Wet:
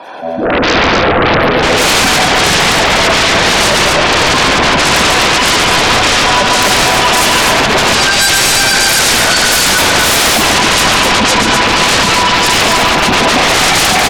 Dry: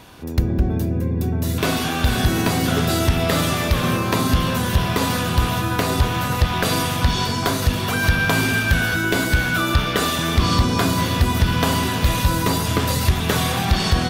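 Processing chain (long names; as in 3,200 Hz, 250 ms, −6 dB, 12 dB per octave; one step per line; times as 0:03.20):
lower of the sound and its delayed copy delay 1.2 ms
gate on every frequency bin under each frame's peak −20 dB strong
high-pass filter 430 Hz 24 dB per octave
spectral tilt −4.5 dB per octave
automatic gain control gain up to 16 dB
brickwall limiter −8 dBFS, peak gain reduction 7 dB
shaped tremolo triangle 1.7 Hz, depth 60%
sine wavefolder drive 18 dB, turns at −8 dBFS
on a send: multi-tap delay 141/254 ms −5/−3 dB
on the sum: level −1 dB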